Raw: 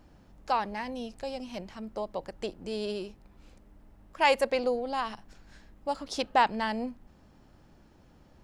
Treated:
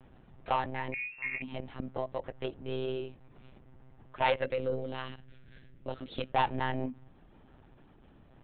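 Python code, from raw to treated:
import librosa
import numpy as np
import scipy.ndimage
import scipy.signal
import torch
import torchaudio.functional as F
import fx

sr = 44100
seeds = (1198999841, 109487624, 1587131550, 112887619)

y = fx.peak_eq(x, sr, hz=910.0, db=-14.5, octaves=0.84, at=(4.41, 6.34))
y = 10.0 ** (-22.0 / 20.0) * np.tanh(y / 10.0 ** (-22.0 / 20.0))
y = fx.freq_invert(y, sr, carrier_hz=2700, at=(0.93, 1.42))
y = fx.lpc_monotone(y, sr, seeds[0], pitch_hz=130.0, order=16)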